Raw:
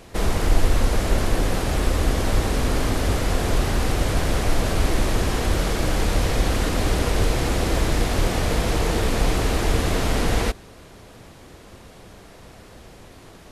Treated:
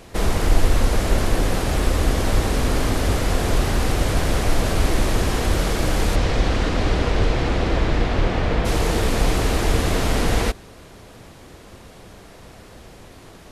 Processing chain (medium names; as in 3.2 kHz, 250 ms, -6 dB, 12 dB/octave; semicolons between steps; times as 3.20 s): 6.15–8.64 s: low-pass 5.7 kHz -> 3 kHz 12 dB/octave; trim +1.5 dB